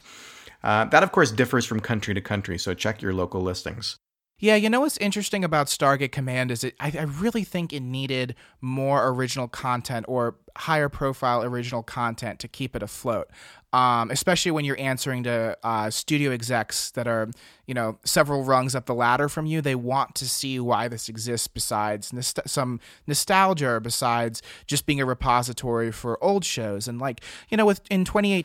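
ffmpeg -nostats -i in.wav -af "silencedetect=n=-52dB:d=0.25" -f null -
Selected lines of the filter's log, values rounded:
silence_start: 3.97
silence_end: 4.39 | silence_duration: 0.42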